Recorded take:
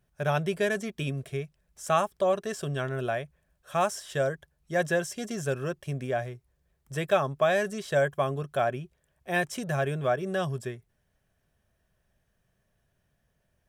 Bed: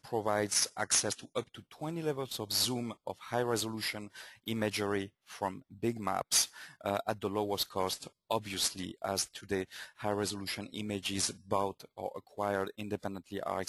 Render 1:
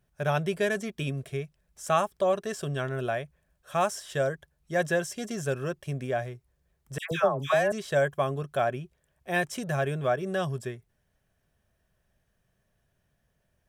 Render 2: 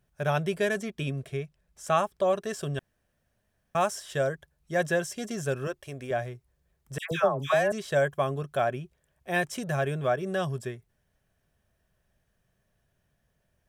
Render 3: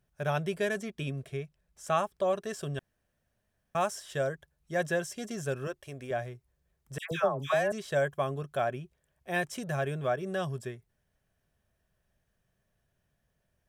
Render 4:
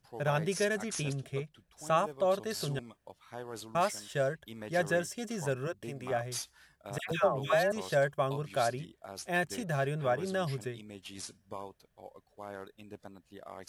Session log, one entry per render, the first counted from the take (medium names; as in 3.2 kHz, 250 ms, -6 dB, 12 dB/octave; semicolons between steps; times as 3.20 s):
6.98–7.72 s: phase dispersion lows, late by 132 ms, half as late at 1.3 kHz
0.83–2.24 s: treble shelf 7.1 kHz -5 dB; 2.79–3.75 s: room tone; 5.67–6.11 s: peaking EQ 170 Hz -14.5 dB
trim -3.5 dB
add bed -11 dB